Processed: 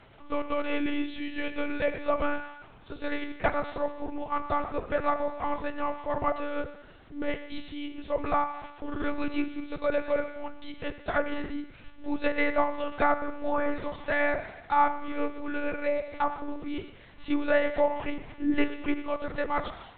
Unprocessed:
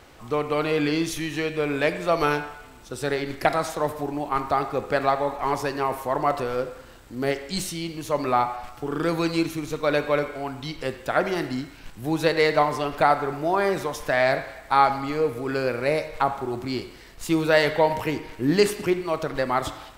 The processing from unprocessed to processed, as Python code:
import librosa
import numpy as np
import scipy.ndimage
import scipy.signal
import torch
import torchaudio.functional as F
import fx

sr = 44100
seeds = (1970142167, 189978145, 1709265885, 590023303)

y = x + 10.0 ** (-23.0 / 20.0) * np.pad(x, (int(124 * sr / 1000.0), 0))[:len(x)]
y = fx.lpc_monotone(y, sr, seeds[0], pitch_hz=290.0, order=10)
y = fx.env_lowpass_down(y, sr, base_hz=2200.0, full_db=-16.5)
y = y * librosa.db_to_amplitude(-4.5)